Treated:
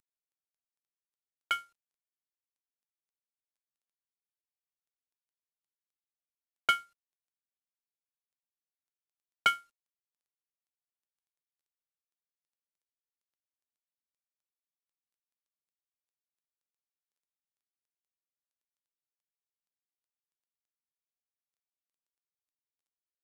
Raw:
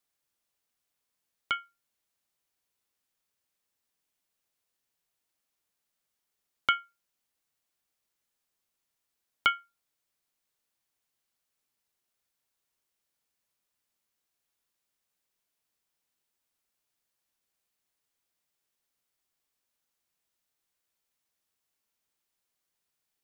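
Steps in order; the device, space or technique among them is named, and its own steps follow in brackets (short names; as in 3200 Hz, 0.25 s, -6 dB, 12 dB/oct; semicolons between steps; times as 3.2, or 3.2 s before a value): early wireless headset (HPF 180 Hz 6 dB/oct; CVSD 64 kbps)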